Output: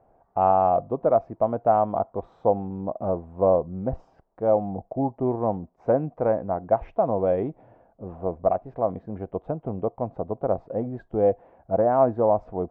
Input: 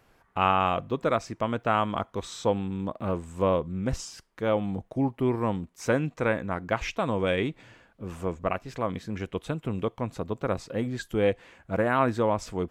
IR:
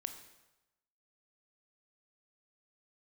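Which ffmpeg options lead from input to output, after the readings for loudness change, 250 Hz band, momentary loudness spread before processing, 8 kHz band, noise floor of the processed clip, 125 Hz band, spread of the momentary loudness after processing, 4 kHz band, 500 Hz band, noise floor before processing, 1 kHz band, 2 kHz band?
+3.5 dB, -0.5 dB, 9 LU, under -35 dB, -63 dBFS, -1.0 dB, 11 LU, under -25 dB, +6.0 dB, -64 dBFS, +4.0 dB, under -10 dB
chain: -af "lowpass=f=710:t=q:w=4,volume=0.841"

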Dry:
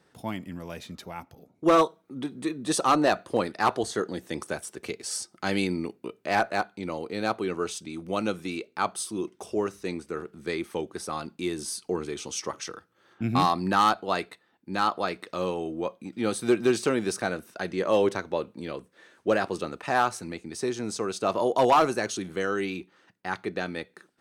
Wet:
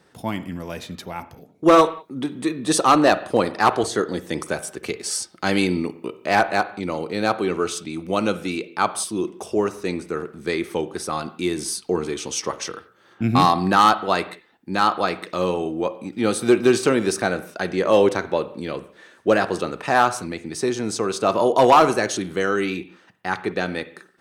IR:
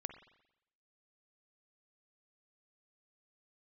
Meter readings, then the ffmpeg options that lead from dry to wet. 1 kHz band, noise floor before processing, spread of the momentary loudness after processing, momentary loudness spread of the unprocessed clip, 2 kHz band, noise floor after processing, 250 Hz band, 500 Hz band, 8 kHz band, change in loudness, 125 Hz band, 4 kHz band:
+6.5 dB, -67 dBFS, 14 LU, 14 LU, +6.5 dB, -55 dBFS, +6.5 dB, +6.5 dB, +6.5 dB, +6.5 dB, +6.5 dB, +6.5 dB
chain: -filter_complex "[0:a]asplit=2[s0][s1];[1:a]atrim=start_sample=2205,afade=t=out:st=0.26:d=0.01,atrim=end_sample=11907[s2];[s1][s2]afir=irnorm=-1:irlink=0,volume=1.68[s3];[s0][s3]amix=inputs=2:normalize=0"

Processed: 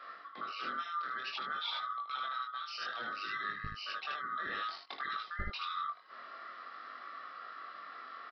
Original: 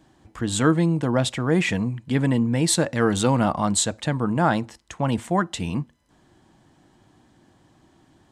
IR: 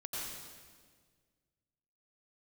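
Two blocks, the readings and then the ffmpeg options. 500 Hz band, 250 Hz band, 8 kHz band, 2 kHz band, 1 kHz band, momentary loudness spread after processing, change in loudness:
-29.0 dB, -35.0 dB, under -35 dB, -8.5 dB, -9.0 dB, 10 LU, -17.0 dB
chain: -filter_complex "[0:a]afftfilt=real='real(if(lt(b,960),b+48*(1-2*mod(floor(b/48),2)),b),0)':imag='imag(if(lt(b,960),b+48*(1-2*mod(floor(b/48),2)),b),0)':win_size=2048:overlap=0.75,acrossover=split=140|3000[s0][s1][s2];[s1]acompressor=threshold=0.0224:ratio=8[s3];[s0][s3][s2]amix=inputs=3:normalize=0,acrossover=split=230|4000[s4][s5][s6];[s4]acrusher=bits=3:mix=0:aa=0.5[s7];[s7][s5][s6]amix=inputs=3:normalize=0,aecho=1:1:21|57|77:0.299|0.237|0.631,areverse,acompressor=threshold=0.00501:ratio=4,areverse,aresample=11025,aresample=44100,flanger=delay=19:depth=5.4:speed=0.55,volume=3.35"

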